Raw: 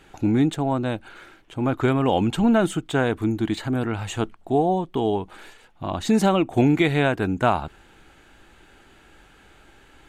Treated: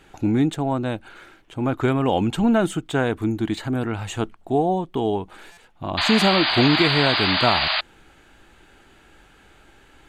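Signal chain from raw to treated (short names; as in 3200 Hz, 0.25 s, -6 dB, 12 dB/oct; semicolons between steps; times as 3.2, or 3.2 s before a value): painted sound noise, 5.97–7.81, 580–4900 Hz -22 dBFS; stuck buffer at 5.52, samples 256, times 8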